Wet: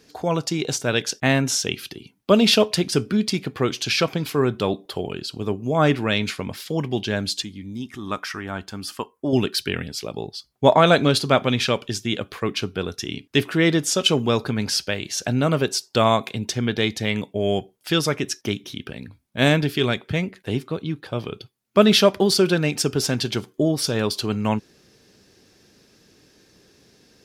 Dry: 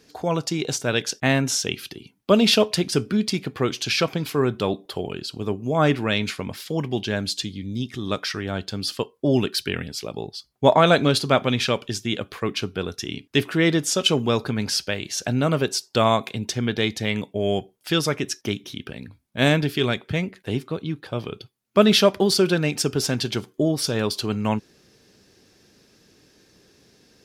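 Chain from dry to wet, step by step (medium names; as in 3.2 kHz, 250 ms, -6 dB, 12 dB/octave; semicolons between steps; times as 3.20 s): 7.42–9.33 s: graphic EQ 125/500/1000/4000 Hz -9/-8/+5/-10 dB; trim +1 dB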